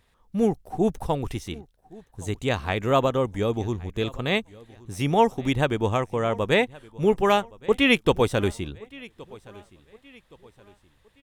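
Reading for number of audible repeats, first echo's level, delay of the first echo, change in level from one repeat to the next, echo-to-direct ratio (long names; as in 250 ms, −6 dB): 2, −22.5 dB, 1,120 ms, −8.0 dB, −22.0 dB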